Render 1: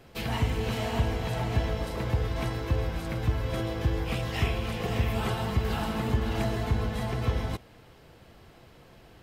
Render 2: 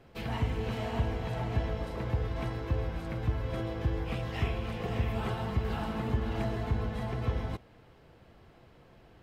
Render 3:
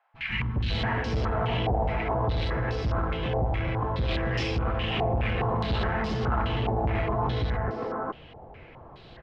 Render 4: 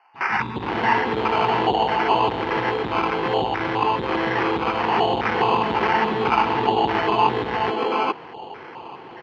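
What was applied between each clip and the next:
treble shelf 4 kHz -10.5 dB; trim -3.5 dB
three bands offset in time highs, lows, mids 140/550 ms, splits 230/1500 Hz; saturation -31.5 dBFS, distortion -9 dB; step-sequenced low-pass 4.8 Hz 780–5200 Hz; trim +9 dB
in parallel at -6 dB: saturation -32 dBFS, distortion -10 dB; on the sum: sample-and-hold 12×; cabinet simulation 280–3400 Hz, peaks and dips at 380 Hz +4 dB, 610 Hz -9 dB, 900 Hz +8 dB; trim +7.5 dB

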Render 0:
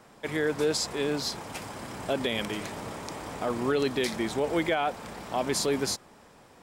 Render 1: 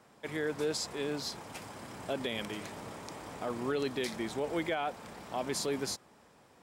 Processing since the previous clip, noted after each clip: high-pass 56 Hz; trim -6.5 dB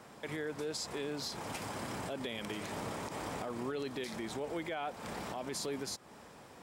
compression 4:1, threshold -43 dBFS, peak gain reduction 12.5 dB; peak limiter -36 dBFS, peak gain reduction 9 dB; trim +7 dB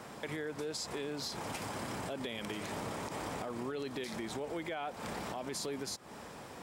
compression 2:1, threshold -47 dBFS, peak gain reduction 7.5 dB; trim +6 dB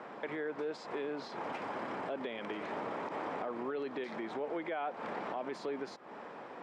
band-pass 290–2000 Hz; trim +3 dB

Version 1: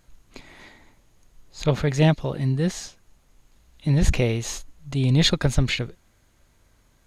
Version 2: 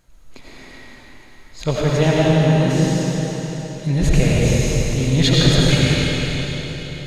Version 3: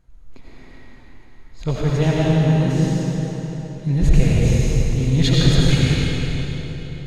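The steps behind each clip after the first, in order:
algorithmic reverb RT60 4.5 s, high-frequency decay 0.95×, pre-delay 50 ms, DRR -6.5 dB
bass shelf 150 Hz +8.5 dB; band-stop 590 Hz, Q 12; tape noise reduction on one side only decoder only; trim -4.5 dB

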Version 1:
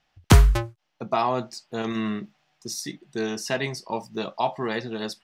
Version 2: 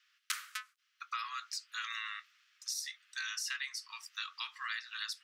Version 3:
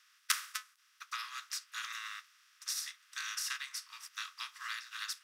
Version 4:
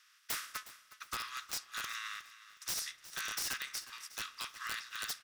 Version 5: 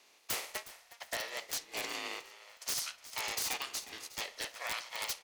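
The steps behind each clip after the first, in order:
steep high-pass 1.2 kHz 72 dB/octave; compression 8:1, threshold -37 dBFS, peak gain reduction 18 dB; trim +1.5 dB
spectral levelling over time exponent 0.4; treble shelf 9.2 kHz +8.5 dB; upward expansion 2.5:1, over -43 dBFS; trim +1 dB
integer overflow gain 30 dB; feedback delay 363 ms, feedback 31%, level -16 dB; spring tank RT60 1.3 s, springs 32 ms, DRR 19 dB; trim +1 dB
ring modulator with a swept carrier 710 Hz, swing 20%, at 0.53 Hz; trim +5 dB

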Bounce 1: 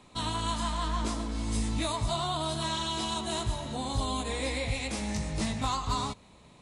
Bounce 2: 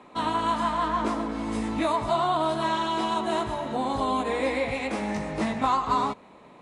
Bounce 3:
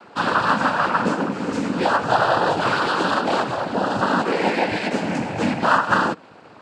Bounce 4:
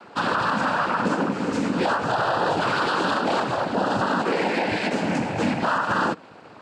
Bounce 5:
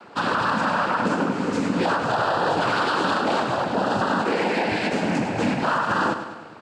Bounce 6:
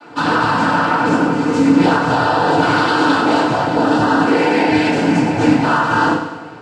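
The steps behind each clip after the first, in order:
three-band isolator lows -19 dB, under 210 Hz, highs -17 dB, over 2.3 kHz; trim +9 dB
noise-vocoded speech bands 8; trim +6.5 dB
peak limiter -13.5 dBFS, peak gain reduction 10.5 dB
feedback delay 101 ms, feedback 56%, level -10 dB
FDN reverb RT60 0.36 s, low-frequency decay 1.4×, high-frequency decay 0.9×, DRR -8 dB; trim -2 dB

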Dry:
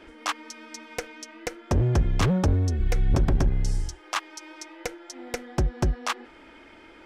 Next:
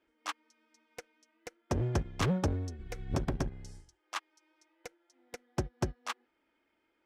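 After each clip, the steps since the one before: bass shelf 61 Hz -12 dB; upward expansion 2.5:1, over -37 dBFS; trim -3.5 dB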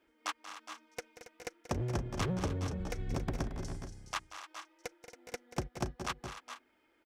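compression 3:1, threshold -38 dBFS, peak gain reduction 10.5 dB; on a send: multi-tap echo 184/225/277/415/431/463 ms -13.5/-12/-13.5/-12.5/-12/-20 dB; on the sum: trim +4 dB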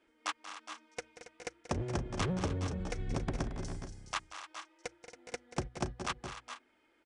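Chebyshev low-pass 10 kHz, order 6; hum notches 60/120 Hz; trim +1.5 dB

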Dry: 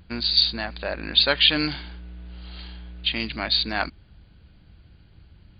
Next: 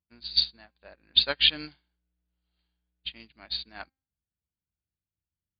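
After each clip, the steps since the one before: high-pass 50 Hz; de-hum 265 Hz, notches 27; upward expansion 2.5:1, over -41 dBFS; trim -1.5 dB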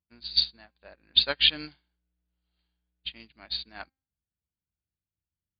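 no audible change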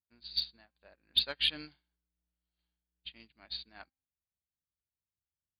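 saturation -8 dBFS, distortion -22 dB; random flutter of the level, depth 55%; trim -5.5 dB

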